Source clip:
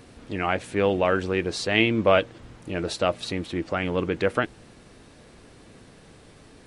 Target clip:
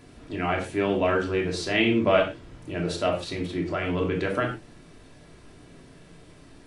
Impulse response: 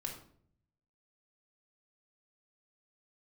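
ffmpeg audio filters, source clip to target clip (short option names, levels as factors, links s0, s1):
-filter_complex "[1:a]atrim=start_sample=2205,afade=t=out:st=0.21:d=0.01,atrim=end_sample=9702,asetrate=48510,aresample=44100[s0];[0:a][s0]afir=irnorm=-1:irlink=0"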